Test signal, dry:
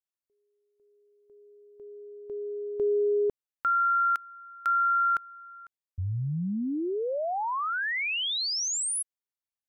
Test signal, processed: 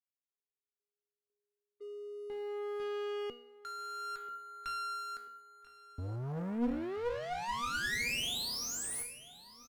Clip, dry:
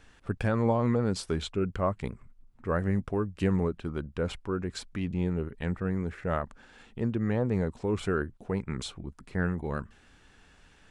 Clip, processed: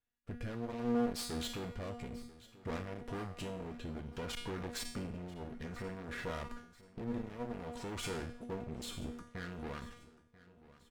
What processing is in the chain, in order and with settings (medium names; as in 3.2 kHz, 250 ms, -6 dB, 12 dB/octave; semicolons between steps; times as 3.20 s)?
gate -46 dBFS, range -23 dB; in parallel at -1 dB: compression, threshold -33 dBFS; on the sum: peak limiter -22 dBFS; waveshaping leveller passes 3; rotary cabinet horn 0.6 Hz; feedback comb 240 Hz, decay 0.56 s, harmonics all, mix 90%; one-sided clip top -46.5 dBFS; on a send: feedback delay 988 ms, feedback 43%, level -19 dB; on the sum: trim +6.5 dB